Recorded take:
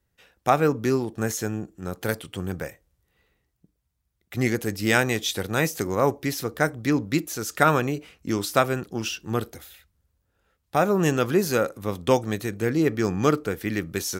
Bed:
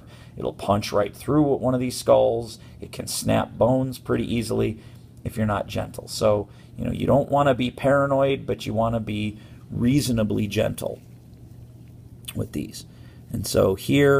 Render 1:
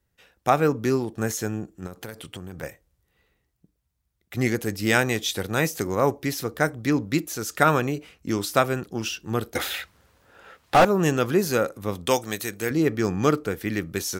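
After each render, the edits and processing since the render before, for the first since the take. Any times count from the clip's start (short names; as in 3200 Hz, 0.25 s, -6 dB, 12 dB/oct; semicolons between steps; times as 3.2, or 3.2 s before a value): 1.86–2.63 compressor 8:1, threshold -32 dBFS; 9.55–10.85 overdrive pedal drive 32 dB, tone 2300 Hz, clips at -7 dBFS; 12.06–12.71 tilt +2.5 dB/oct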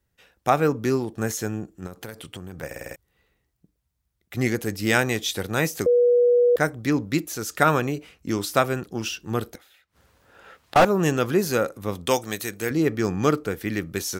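2.66 stutter in place 0.05 s, 6 plays; 5.86–6.56 bleep 485 Hz -14 dBFS; 9.45–10.76 flipped gate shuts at -27 dBFS, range -27 dB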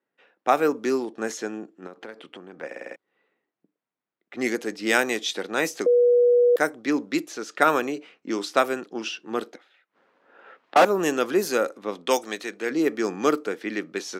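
low-pass opened by the level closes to 2200 Hz, open at -16.5 dBFS; HPF 250 Hz 24 dB/oct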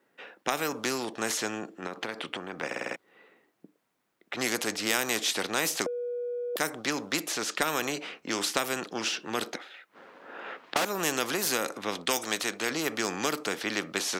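compressor, threshold -21 dBFS, peak gain reduction 9.5 dB; spectral compressor 2:1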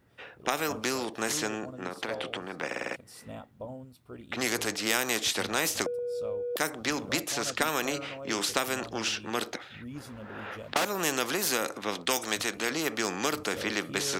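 add bed -22 dB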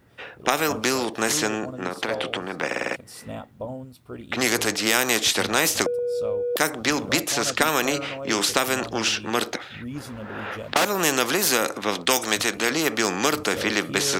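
gain +7.5 dB; limiter -3 dBFS, peak gain reduction 2 dB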